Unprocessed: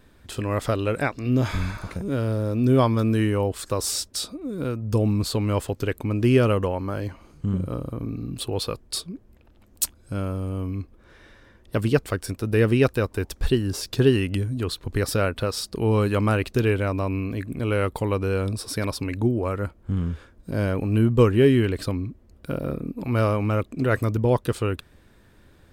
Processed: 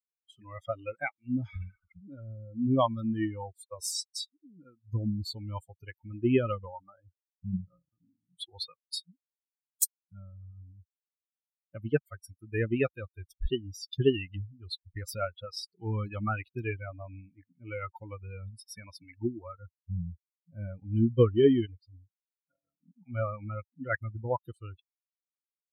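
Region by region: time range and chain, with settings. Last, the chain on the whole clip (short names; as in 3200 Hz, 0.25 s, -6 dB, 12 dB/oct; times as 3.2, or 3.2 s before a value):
21.66–22.81 resonator 96 Hz, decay 0.18 s, harmonics odd + mismatched tape noise reduction decoder only
whole clip: per-bin expansion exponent 3; low shelf 110 Hz -5 dB; spectral noise reduction 18 dB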